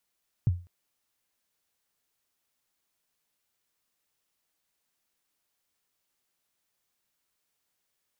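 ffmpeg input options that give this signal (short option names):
-f lavfi -i "aevalsrc='0.15*pow(10,-3*t/0.32)*sin(2*PI*(140*0.028/log(88/140)*(exp(log(88/140)*min(t,0.028)/0.028)-1)+88*max(t-0.028,0)))':d=0.2:s=44100"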